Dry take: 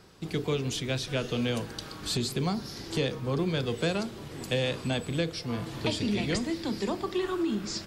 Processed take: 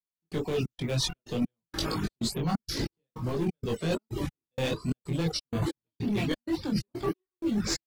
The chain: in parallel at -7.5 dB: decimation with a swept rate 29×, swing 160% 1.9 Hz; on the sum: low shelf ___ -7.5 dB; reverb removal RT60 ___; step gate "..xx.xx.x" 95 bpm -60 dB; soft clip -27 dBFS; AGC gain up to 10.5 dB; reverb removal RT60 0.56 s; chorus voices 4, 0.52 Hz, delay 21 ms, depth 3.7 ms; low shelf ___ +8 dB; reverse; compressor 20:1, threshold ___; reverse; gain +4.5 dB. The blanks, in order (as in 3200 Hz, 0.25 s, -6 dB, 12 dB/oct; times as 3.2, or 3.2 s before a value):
120 Hz, 0.61 s, 370 Hz, -30 dBFS